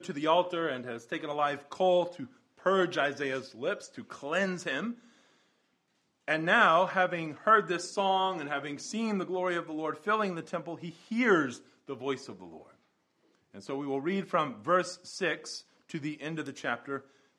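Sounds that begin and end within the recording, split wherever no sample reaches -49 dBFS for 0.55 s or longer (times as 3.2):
6.28–12.69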